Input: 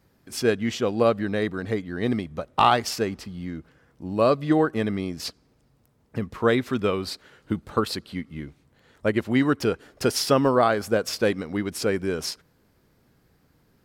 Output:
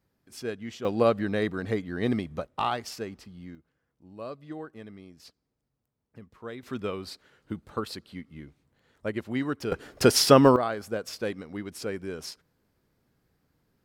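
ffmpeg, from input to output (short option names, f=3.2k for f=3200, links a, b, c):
-af "asetnsamples=n=441:p=0,asendcmd='0.85 volume volume -2dB;2.47 volume volume -10dB;3.55 volume volume -19dB;6.63 volume volume -8.5dB;9.72 volume volume 3.5dB;10.56 volume volume -9dB',volume=-12dB"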